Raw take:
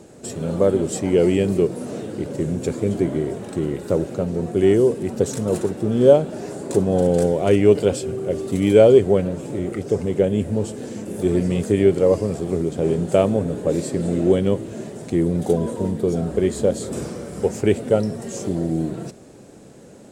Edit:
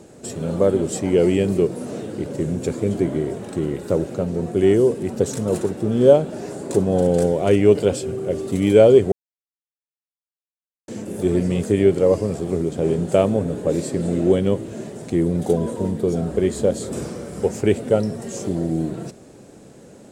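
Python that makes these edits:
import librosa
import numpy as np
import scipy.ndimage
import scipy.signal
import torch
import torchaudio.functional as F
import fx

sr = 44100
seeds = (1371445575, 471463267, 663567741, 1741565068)

y = fx.edit(x, sr, fx.silence(start_s=9.12, length_s=1.76), tone=tone)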